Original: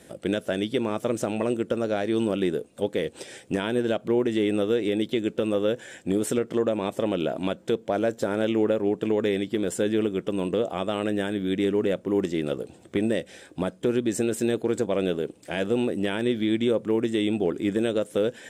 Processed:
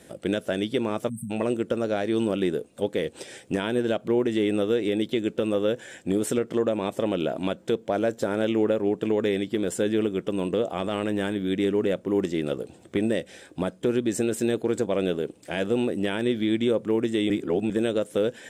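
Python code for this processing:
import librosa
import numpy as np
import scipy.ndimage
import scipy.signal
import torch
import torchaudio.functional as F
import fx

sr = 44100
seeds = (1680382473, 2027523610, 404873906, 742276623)

y = fx.spec_erase(x, sr, start_s=1.09, length_s=0.22, low_hz=240.0, high_hz=8000.0)
y = fx.transient(y, sr, attack_db=-5, sustain_db=5, at=(10.79, 11.36))
y = fx.edit(y, sr, fx.reverse_span(start_s=17.3, length_s=0.4), tone=tone)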